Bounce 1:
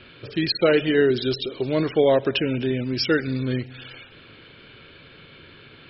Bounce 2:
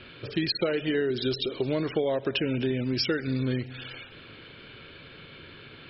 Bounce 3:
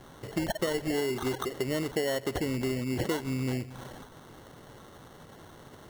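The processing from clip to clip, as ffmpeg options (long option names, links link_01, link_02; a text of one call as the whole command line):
ffmpeg -i in.wav -af "acompressor=threshold=-23dB:ratio=12" out.wav
ffmpeg -i in.wav -af "acrusher=samples=18:mix=1:aa=0.000001,volume=-3dB" out.wav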